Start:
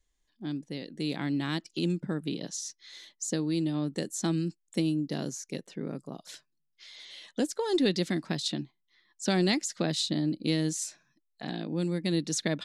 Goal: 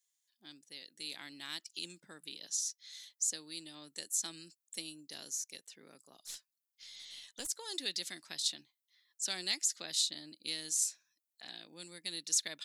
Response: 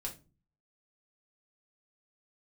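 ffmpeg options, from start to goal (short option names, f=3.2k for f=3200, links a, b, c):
-filter_complex "[0:a]aderivative,asettb=1/sr,asplit=3[a][b][c];[a]atrim=end=6.044[d];[b]atrim=start=6.04:end=7.47,asetpts=PTS-STARTPTS,afade=t=in:d=0.004:c=qsin,afade=t=out:st=1.426:d=0.004:c=qsin,aeval=exprs='0.0316*(cos(1*acos(clip(val(0)/0.0316,-1,1)))-cos(1*PI/2))+0.00501*(cos(2*acos(clip(val(0)/0.0316,-1,1)))-cos(2*PI/2))+0.000708*(cos(6*acos(clip(val(0)/0.0316,-1,1)))-cos(6*PI/2))':c=same[e];[c]atrim=start=7.466[f];[d][e]acrossfade=d=0.004:c1=hsin:c2=qsin[g];[g][f]acrossfade=d=0.004:c1=qsin:c2=hsin,volume=3dB"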